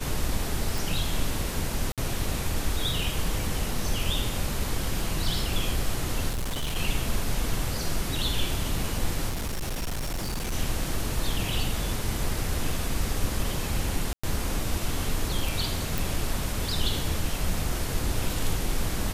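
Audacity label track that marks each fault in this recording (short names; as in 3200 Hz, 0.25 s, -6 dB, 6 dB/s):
0.780000	0.780000	pop
1.920000	1.980000	gap 57 ms
6.290000	6.770000	clipped -25.5 dBFS
9.290000	10.530000	clipped -26.5 dBFS
14.130000	14.230000	gap 0.105 s
15.980000	15.980000	pop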